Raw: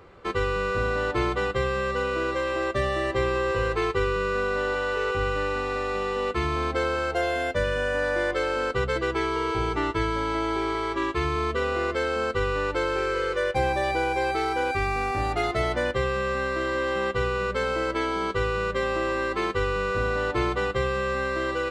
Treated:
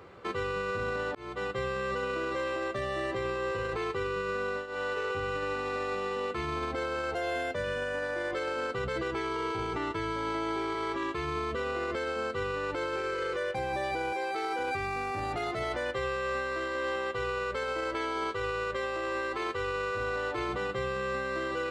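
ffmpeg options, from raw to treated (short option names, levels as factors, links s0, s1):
-filter_complex "[0:a]asettb=1/sr,asplit=3[s0][s1][s2];[s0]atrim=end=14.124[s3];[s1]atrim=start=14.12:end=14.59,asetpts=PTS-STARTPTS,afade=t=in:d=0.004:c=qsin,afade=t=out:st=0.466:d=0.004:c=qsin,highpass=270[s4];[s2]atrim=start=14.586[s5];[s3][s4]acrossfade=d=0.004:c1=hsin:c2=qsin[s6];[s6][s5]acrossfade=d=0.004:c1=qsin:c2=hsin,asettb=1/sr,asplit=3[s7][s8][s9];[s7]atrim=end=15.634[s10];[s8]atrim=start=15.63:end=20.49,asetpts=PTS-STARTPTS,afade=t=in:d=0.004:c=qsin,afade=t=out:st=4.856:d=0.004:c=qsin,equalizer=f=180:w=1.5:g=-12[s11];[s9]atrim=start=20.486[s12];[s10][s11]acrossfade=d=0.004:c1=hsin:c2=qsin[s13];[s13][s12]acrossfade=d=0.004:c1=qsin:c2=hsin,asplit=3[s14][s15][s16];[s14]atrim=end=1.15,asetpts=PTS-STARTPTS,afade=t=out:st=1.146:d=0.004:c=hsin[s17];[s15]atrim=start=1.15:end=4.67,asetpts=PTS-STARTPTS,afade=t=in:d=0.64,afade=t=out:st=3.23:d=0.29:silence=0.133352[s18];[s16]atrim=start=4.67,asetpts=PTS-STARTPTS,afade=t=in:d=0.29:silence=0.133352[s19];[s17][s18][s19]concat=n=3:v=0:a=1,highpass=87,alimiter=level_in=1.12:limit=0.0631:level=0:latency=1:release=26,volume=0.891"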